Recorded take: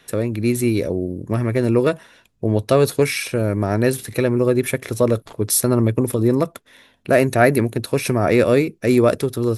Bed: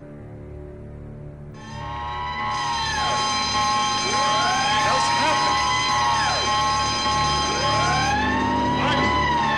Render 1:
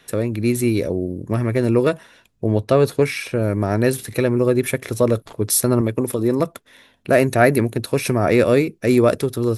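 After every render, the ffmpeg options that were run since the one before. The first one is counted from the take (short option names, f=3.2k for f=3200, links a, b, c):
-filter_complex "[0:a]asettb=1/sr,asplit=3[a][b][c];[a]atrim=end=2.584[d];[b]atrim=start=2.58:end=3.42,asetpts=PTS-STARTPTS,afade=t=in:d=0.004:c=qsin,afade=t=out:st=0.836:d=0.004:c=qsin,highshelf=f=4.1k:g=-8.5[e];[c]atrim=start=3.416[f];[d][e]acrossfade=d=0.004:c1=hsin:c2=qsin[g];[g][f]acrossfade=d=0.004:c1=qsin:c2=hsin,asettb=1/sr,asplit=3[h][i][j];[h]atrim=end=5.814[k];[i]atrim=start=5.81:end=6.4,asetpts=PTS-STARTPTS,afade=t=in:d=0.004:c=qsin,afade=t=out:st=0.586:d=0.004:c=qsin,lowshelf=f=130:g=-10.5[l];[j]atrim=start=6.396[m];[k][l]acrossfade=d=0.004:c1=hsin:c2=qsin[n];[n][m]acrossfade=d=0.004:c1=qsin:c2=hsin"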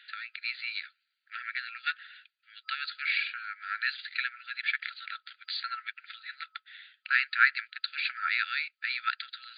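-af "afftfilt=real='re*between(b*sr/4096,1300,4800)':imag='im*between(b*sr/4096,1300,4800)':win_size=4096:overlap=0.75,adynamicequalizer=threshold=0.00708:dfrequency=2400:dqfactor=2.2:tfrequency=2400:tqfactor=2.2:attack=5:release=100:ratio=0.375:range=1.5:mode=cutabove:tftype=bell"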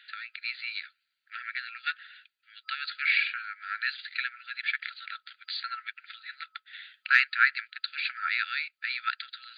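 -filter_complex "[0:a]asettb=1/sr,asplit=3[a][b][c];[a]atrim=end=2.874[d];[b]atrim=start=2.87:end=3.42,asetpts=PTS-STARTPTS,afade=t=in:d=0.004:c=qsin,afade=t=out:st=0.546:d=0.004:c=qsin,equalizer=f=2k:w=1:g=5[e];[c]atrim=start=3.416[f];[d][e]acrossfade=d=0.004:c1=hsin:c2=qsin[g];[g][f]acrossfade=d=0.004:c1=qsin:c2=hsin,asettb=1/sr,asplit=3[h][i][j];[h]atrim=end=6.734[k];[i]atrim=start=6.73:end=7.24,asetpts=PTS-STARTPTS,afade=t=in:d=0.004:c=qsin,afade=t=out:st=0.506:d=0.004:c=qsin,acontrast=20[l];[j]atrim=start=7.236[m];[k][l]acrossfade=d=0.004:c1=hsin:c2=qsin[n];[n][m]acrossfade=d=0.004:c1=qsin:c2=hsin"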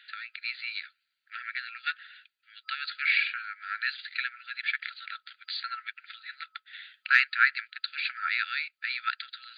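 -af anull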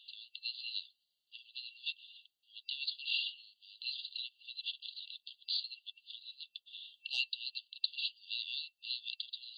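-af "afftfilt=real='re*(1-between(b*sr/4096,880,2700))':imag='im*(1-between(b*sr/4096,880,2700))':win_size=4096:overlap=0.75"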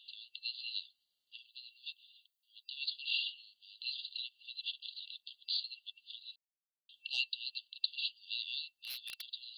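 -filter_complex "[0:a]asettb=1/sr,asplit=3[a][b][c];[a]atrim=end=1.464[d];[b]atrim=start=1.46:end=2.77,asetpts=PTS-STARTPTS,afade=t=in:d=0.004:c=qsin,afade=t=out:st=1.306:d=0.004:c=qsin,aderivative[e];[c]atrim=start=2.766[f];[d][e]acrossfade=d=0.004:c1=hsin:c2=qsin[g];[g][f]acrossfade=d=0.004:c1=qsin:c2=hsin,asplit=3[h][i][j];[h]afade=t=out:st=8.65:d=0.02[k];[i]aeval=exprs='0.0158*(abs(mod(val(0)/0.0158+3,4)-2)-1)':c=same,afade=t=in:st=8.65:d=0.02,afade=t=out:st=9.21:d=0.02[l];[j]afade=t=in:st=9.21:d=0.02[m];[k][l][m]amix=inputs=3:normalize=0,asplit=3[n][o][p];[n]atrim=end=6.36,asetpts=PTS-STARTPTS,afade=t=out:st=6.356:d=0.004:c=hsin[q];[o]atrim=start=6.36:end=6.89,asetpts=PTS-STARTPTS,volume=0[r];[p]atrim=start=6.89,asetpts=PTS-STARTPTS,afade=t=in:d=0.004:c=hsin[s];[q][r][s]concat=n=3:v=0:a=1"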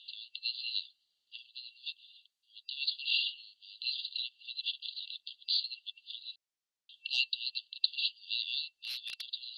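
-af "lowpass=5.5k,highshelf=f=3.7k:g=11"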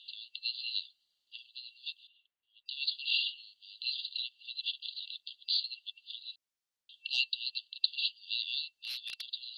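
-filter_complex "[0:a]asettb=1/sr,asplit=3[a][b][c];[a]atrim=end=2.074[d];[b]atrim=start=2.07:end=2.66,asetpts=PTS-STARTPTS,afade=t=in:d=0.004:c=qsin,afade=t=out:st=0.586:d=0.004:c=qsin,lowpass=f=2.6k:w=0.5412,lowpass=f=2.6k:w=1.3066[e];[c]atrim=start=2.656[f];[d][e]acrossfade=d=0.004:c1=hsin:c2=qsin[g];[g][f]acrossfade=d=0.004:c1=qsin:c2=hsin"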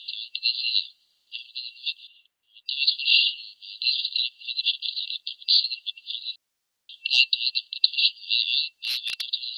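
-af "volume=12dB,alimiter=limit=-2dB:level=0:latency=1"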